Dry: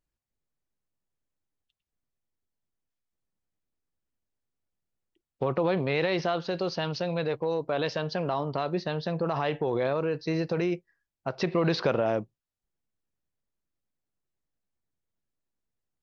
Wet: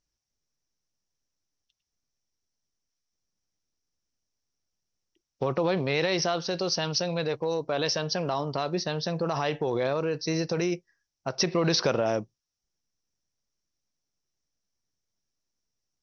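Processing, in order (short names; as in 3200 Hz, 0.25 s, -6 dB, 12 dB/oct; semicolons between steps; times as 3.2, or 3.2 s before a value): synth low-pass 5700 Hz, resonance Q 9.1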